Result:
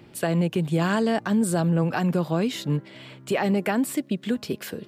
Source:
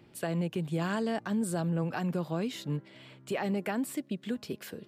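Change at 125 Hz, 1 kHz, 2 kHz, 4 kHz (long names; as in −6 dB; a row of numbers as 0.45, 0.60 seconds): +8.5, +8.5, +8.5, +8.5 decibels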